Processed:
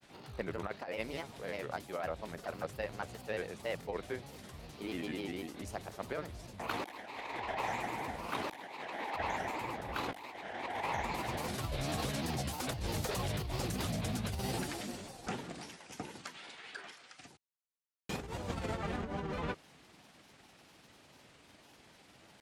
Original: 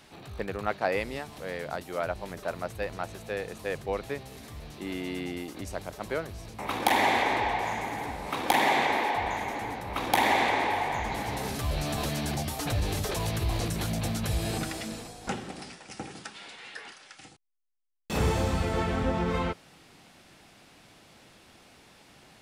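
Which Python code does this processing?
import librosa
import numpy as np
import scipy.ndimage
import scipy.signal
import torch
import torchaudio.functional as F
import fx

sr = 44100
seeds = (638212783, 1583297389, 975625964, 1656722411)

y = fx.highpass(x, sr, hz=53.0, slope=6)
y = fx.over_compress(y, sr, threshold_db=-30.0, ratio=-0.5)
y = fx.granulator(y, sr, seeds[0], grain_ms=100.0, per_s=20.0, spray_ms=11.0, spread_st=3)
y = y * librosa.db_to_amplitude(-5.5)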